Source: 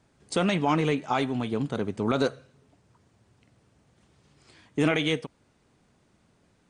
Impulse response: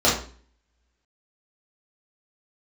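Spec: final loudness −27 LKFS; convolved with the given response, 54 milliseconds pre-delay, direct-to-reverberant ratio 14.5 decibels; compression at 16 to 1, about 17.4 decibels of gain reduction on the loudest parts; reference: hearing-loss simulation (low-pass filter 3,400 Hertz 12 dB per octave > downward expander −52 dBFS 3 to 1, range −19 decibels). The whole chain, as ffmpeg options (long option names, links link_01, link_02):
-filter_complex "[0:a]acompressor=threshold=-37dB:ratio=16,asplit=2[link_01][link_02];[1:a]atrim=start_sample=2205,adelay=54[link_03];[link_02][link_03]afir=irnorm=-1:irlink=0,volume=-33.5dB[link_04];[link_01][link_04]amix=inputs=2:normalize=0,lowpass=3400,agate=range=-19dB:threshold=-52dB:ratio=3,volume=15.5dB"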